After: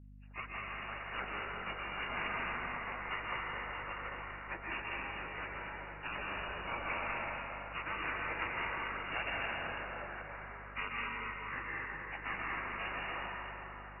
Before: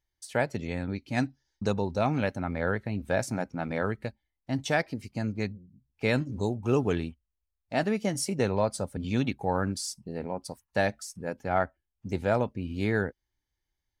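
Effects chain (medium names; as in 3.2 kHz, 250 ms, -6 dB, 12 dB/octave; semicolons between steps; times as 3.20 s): knee-point frequency compression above 1.7 kHz 1.5:1; spectral gate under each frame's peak -25 dB weak; in parallel at -10 dB: bit crusher 8-bit; on the sum: brick-wall FIR low-pass 2.9 kHz; on a send: two-band feedback delay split 840 Hz, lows 90 ms, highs 217 ms, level -14 dB; on the sum: plate-style reverb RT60 4.5 s, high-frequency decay 0.5×, pre-delay 115 ms, DRR -5.5 dB; hum 50 Hz, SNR 13 dB; trim +3 dB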